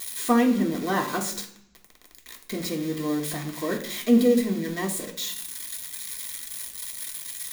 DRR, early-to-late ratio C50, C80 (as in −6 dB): −1.5 dB, 10.5 dB, 14.0 dB